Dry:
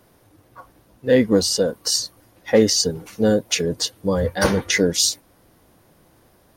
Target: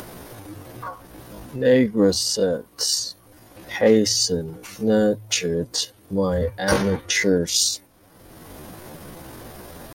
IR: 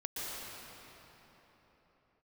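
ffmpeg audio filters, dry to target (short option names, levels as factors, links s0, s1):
-af "acompressor=mode=upward:threshold=0.0891:ratio=2.5,bandreject=f=53.63:t=h:w=4,bandreject=f=107.26:t=h:w=4,atempo=0.66,volume=0.841"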